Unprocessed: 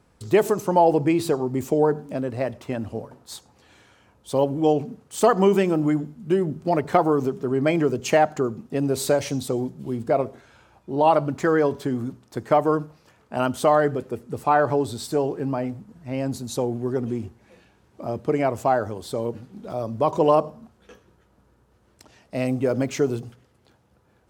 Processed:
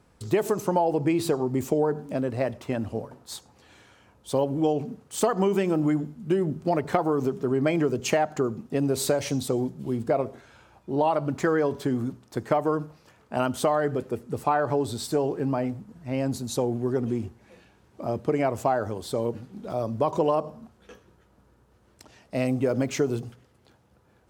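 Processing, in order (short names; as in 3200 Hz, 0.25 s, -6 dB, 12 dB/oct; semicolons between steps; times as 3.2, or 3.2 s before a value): compressor, threshold -19 dBFS, peak gain reduction 8 dB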